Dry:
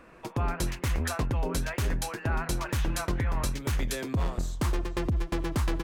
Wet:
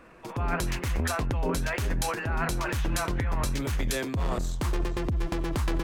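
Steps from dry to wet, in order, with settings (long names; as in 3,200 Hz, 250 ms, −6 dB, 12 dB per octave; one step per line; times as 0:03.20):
transient designer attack −3 dB, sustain +10 dB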